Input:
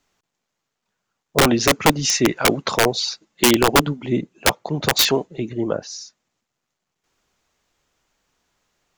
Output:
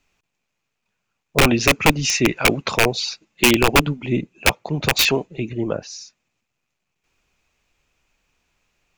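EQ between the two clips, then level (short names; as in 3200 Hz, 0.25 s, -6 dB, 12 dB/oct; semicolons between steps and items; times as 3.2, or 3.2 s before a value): low shelf 110 Hz +10 dB; bell 2500 Hz +12 dB 0.31 oct; -2.0 dB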